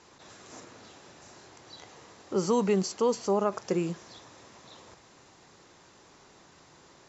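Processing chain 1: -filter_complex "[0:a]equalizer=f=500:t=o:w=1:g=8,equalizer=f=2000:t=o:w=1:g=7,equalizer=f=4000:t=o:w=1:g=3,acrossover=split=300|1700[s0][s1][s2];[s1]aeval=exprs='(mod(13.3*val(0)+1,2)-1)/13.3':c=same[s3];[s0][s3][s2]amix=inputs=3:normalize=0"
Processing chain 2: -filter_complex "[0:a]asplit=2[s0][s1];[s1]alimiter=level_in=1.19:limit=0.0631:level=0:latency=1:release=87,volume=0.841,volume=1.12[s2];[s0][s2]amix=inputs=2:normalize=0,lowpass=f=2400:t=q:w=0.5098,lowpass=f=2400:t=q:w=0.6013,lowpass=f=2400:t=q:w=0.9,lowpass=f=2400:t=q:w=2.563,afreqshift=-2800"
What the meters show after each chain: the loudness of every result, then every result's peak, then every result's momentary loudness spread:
-27.5 LUFS, -22.0 LUFS; -15.5 dBFS, -12.5 dBFS; 21 LU, 20 LU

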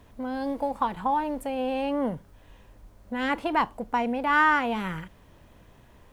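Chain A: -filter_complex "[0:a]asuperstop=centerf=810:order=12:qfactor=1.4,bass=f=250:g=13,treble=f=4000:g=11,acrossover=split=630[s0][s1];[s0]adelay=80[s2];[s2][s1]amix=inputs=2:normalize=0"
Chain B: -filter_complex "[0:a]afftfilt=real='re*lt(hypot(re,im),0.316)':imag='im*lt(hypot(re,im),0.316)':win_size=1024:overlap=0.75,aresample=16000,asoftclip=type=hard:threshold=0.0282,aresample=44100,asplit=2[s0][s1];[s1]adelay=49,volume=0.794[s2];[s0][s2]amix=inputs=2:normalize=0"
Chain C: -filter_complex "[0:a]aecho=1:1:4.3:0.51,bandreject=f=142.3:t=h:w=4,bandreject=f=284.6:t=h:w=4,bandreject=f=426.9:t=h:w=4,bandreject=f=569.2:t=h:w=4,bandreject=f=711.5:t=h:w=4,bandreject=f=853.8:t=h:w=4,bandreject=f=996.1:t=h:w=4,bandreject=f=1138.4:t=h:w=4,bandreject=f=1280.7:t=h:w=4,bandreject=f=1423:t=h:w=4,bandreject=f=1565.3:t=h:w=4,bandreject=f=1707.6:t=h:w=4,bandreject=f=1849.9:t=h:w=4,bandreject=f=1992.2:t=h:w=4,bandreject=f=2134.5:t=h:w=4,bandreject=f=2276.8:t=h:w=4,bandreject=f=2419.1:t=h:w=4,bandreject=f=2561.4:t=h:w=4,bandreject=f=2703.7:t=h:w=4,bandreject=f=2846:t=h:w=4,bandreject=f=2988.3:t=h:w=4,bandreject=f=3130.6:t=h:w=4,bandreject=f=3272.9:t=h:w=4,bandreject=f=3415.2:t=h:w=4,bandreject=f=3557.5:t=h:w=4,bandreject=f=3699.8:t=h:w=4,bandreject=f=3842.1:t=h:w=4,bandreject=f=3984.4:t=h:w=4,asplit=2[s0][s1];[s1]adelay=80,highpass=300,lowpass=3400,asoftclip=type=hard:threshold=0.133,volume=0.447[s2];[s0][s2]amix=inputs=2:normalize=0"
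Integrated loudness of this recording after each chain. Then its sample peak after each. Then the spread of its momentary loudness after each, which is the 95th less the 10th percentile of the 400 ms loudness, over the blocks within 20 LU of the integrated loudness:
-26.5 LUFS, -33.5 LUFS, -25.0 LUFS; -12.0 dBFS, -24.5 dBFS, -8.0 dBFS; 23 LU, 20 LU, 12 LU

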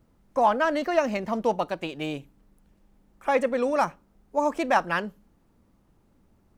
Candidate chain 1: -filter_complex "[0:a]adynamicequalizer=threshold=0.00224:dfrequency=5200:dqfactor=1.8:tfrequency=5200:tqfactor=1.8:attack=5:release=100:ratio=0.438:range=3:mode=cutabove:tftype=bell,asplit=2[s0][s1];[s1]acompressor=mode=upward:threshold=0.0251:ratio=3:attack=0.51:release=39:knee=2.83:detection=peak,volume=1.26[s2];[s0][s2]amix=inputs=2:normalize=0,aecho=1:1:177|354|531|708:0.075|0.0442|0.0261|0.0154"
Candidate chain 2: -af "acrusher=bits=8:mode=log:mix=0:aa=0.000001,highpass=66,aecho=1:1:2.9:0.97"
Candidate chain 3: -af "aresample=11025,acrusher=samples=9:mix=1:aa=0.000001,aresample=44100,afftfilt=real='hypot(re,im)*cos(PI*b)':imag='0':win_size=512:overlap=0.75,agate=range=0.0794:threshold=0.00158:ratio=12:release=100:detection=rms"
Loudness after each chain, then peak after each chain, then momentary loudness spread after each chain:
-19.0 LUFS, -24.0 LUFS, -30.0 LUFS; -1.5 dBFS, -5.5 dBFS, -9.0 dBFS; 10 LU, 12 LU, 10 LU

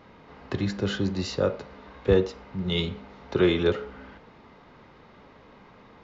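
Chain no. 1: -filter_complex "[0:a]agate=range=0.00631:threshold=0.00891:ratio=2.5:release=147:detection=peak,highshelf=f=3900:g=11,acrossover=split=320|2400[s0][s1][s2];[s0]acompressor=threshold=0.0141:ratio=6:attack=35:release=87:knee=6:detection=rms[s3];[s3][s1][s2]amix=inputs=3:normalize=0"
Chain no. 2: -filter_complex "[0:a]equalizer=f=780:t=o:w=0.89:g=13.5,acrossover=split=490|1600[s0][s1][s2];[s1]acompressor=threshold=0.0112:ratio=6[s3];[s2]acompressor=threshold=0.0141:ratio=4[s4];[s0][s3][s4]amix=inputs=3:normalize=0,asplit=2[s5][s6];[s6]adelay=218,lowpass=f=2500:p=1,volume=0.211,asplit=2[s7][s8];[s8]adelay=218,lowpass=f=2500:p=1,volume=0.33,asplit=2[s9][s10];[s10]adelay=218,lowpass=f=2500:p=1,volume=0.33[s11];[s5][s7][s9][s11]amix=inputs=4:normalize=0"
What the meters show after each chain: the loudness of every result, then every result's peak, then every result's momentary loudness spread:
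-28.0 LUFS, -27.5 LUFS; -10.0 dBFS, -8.5 dBFS; 14 LU, 23 LU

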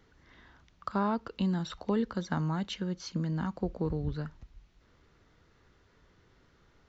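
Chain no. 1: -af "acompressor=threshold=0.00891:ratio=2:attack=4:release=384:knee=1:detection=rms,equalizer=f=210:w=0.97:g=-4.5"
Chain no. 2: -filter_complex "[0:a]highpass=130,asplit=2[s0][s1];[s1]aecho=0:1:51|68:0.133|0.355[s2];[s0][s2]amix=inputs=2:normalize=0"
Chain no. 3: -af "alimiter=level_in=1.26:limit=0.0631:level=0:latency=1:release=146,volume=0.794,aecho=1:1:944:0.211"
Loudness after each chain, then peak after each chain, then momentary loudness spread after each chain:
-44.5 LUFS, -33.5 LUFS, -36.5 LUFS; -25.5 dBFS, -17.0 dBFS, -24.5 dBFS; 16 LU, 6 LU, 16 LU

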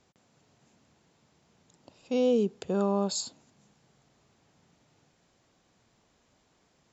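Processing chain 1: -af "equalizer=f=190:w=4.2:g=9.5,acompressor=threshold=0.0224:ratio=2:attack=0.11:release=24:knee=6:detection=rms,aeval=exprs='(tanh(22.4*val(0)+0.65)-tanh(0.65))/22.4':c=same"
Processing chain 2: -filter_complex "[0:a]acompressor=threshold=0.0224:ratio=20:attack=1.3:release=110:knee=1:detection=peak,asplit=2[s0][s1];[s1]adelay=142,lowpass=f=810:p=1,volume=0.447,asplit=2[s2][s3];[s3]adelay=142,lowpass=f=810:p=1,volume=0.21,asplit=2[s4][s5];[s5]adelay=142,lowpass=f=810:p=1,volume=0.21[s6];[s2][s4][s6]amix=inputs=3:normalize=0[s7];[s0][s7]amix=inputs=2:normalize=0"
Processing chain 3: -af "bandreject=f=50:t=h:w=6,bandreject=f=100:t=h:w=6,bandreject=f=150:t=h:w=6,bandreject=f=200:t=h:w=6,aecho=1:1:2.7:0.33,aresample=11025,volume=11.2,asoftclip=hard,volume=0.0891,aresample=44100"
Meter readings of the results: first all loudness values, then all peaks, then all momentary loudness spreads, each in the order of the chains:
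-37.5 LUFS, -40.0 LUFS, -30.0 LUFS; -26.0 dBFS, -20.0 dBFS, -20.5 dBFS; 6 LU, 20 LU, 9 LU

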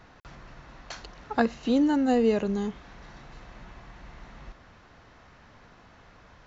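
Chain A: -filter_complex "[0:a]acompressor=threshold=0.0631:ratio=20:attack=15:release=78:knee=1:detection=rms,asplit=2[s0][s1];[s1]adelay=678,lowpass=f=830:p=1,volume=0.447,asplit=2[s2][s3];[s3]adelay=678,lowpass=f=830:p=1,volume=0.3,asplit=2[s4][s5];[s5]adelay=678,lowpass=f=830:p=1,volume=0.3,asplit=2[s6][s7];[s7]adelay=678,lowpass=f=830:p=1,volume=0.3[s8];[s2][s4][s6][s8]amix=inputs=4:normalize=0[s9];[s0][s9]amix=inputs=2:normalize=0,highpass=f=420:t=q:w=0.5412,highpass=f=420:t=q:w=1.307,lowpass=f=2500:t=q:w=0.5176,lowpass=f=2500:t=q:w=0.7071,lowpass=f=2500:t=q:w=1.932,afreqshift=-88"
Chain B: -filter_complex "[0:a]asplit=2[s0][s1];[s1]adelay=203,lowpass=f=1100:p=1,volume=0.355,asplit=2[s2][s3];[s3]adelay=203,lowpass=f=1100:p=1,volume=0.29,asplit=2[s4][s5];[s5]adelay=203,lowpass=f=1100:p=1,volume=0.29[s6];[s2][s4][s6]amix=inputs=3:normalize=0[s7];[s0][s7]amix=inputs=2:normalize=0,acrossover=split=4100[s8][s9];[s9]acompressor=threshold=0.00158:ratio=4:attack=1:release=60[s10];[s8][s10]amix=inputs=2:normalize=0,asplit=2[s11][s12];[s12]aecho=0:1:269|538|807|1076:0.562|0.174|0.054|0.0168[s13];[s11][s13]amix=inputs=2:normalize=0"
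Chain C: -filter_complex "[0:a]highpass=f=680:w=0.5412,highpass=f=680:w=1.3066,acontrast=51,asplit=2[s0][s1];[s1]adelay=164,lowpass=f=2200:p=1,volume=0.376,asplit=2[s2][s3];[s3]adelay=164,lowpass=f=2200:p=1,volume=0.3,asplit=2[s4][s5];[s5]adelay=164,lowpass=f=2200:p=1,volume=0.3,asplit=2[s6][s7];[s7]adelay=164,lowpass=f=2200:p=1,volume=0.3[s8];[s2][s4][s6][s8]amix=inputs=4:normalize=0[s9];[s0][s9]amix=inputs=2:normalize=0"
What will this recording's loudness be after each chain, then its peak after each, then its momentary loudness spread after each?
-37.0 LUFS, -24.5 LUFS, -30.0 LUFS; -17.0 dBFS, -9.0 dBFS, -7.0 dBFS; 23 LU, 22 LU, 23 LU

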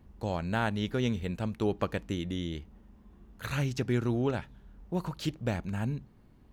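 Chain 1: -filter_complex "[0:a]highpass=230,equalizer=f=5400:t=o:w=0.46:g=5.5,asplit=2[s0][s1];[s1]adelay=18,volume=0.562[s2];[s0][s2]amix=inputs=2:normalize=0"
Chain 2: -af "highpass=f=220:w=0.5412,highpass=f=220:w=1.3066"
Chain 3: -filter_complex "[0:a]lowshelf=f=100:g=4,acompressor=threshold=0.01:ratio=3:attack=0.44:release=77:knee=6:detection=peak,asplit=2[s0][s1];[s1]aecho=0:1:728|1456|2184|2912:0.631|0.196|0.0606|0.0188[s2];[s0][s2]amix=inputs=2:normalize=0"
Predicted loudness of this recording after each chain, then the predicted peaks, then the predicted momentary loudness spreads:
-34.5 LUFS, -35.0 LUFS, -42.5 LUFS; -10.5 dBFS, -15.0 dBFS, -28.5 dBFS; 8 LU, 8 LU, 5 LU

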